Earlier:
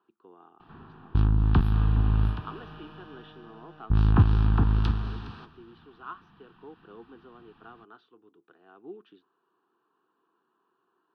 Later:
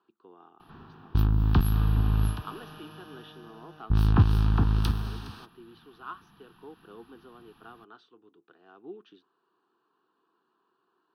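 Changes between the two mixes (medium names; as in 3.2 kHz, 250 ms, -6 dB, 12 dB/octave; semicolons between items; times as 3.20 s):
first sound: send off; master: remove low-pass 3.1 kHz 12 dB/octave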